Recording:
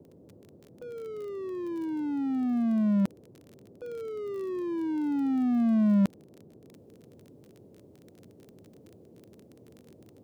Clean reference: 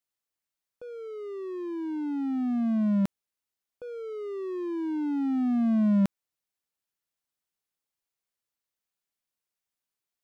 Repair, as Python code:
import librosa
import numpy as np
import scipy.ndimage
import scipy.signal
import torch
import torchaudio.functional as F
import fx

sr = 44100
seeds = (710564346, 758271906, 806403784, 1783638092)

y = fx.fix_declick_ar(x, sr, threshold=6.5)
y = fx.noise_reduce(y, sr, print_start_s=7.69, print_end_s=8.19, reduce_db=30.0)
y = fx.gain(y, sr, db=fx.steps((0.0, 0.0), (6.73, -6.5)))